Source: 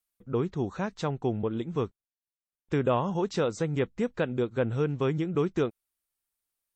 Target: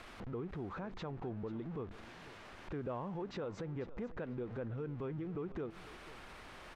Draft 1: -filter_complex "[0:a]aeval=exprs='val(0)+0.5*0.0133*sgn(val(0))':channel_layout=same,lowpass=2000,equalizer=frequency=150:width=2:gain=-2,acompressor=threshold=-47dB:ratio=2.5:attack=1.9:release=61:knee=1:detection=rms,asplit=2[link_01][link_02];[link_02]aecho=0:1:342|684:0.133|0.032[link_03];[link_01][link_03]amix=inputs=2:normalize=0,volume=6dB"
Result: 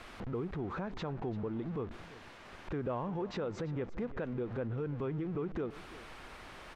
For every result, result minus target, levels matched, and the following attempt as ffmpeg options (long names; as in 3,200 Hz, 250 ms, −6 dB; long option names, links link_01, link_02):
echo 151 ms early; downward compressor: peak gain reduction −4.5 dB
-filter_complex "[0:a]aeval=exprs='val(0)+0.5*0.0133*sgn(val(0))':channel_layout=same,lowpass=2000,equalizer=frequency=150:width=2:gain=-2,acompressor=threshold=-47dB:ratio=2.5:attack=1.9:release=61:knee=1:detection=rms,asplit=2[link_01][link_02];[link_02]aecho=0:1:493|986:0.133|0.032[link_03];[link_01][link_03]amix=inputs=2:normalize=0,volume=6dB"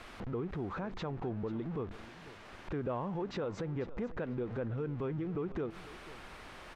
downward compressor: peak gain reduction −4.5 dB
-filter_complex "[0:a]aeval=exprs='val(0)+0.5*0.0133*sgn(val(0))':channel_layout=same,lowpass=2000,equalizer=frequency=150:width=2:gain=-2,acompressor=threshold=-54.5dB:ratio=2.5:attack=1.9:release=61:knee=1:detection=rms,asplit=2[link_01][link_02];[link_02]aecho=0:1:493|986:0.133|0.032[link_03];[link_01][link_03]amix=inputs=2:normalize=0,volume=6dB"